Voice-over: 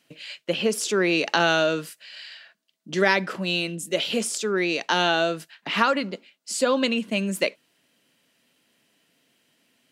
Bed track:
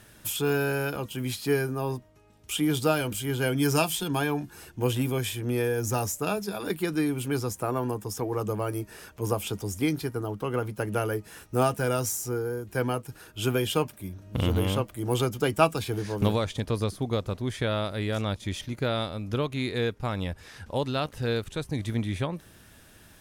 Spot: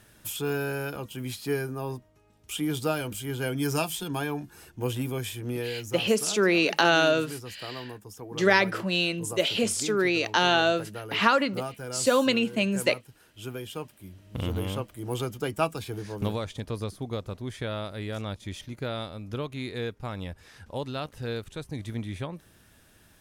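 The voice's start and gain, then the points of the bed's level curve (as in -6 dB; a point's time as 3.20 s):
5.45 s, -0.5 dB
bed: 5.50 s -3.5 dB
5.94 s -11 dB
13.77 s -11 dB
14.35 s -5 dB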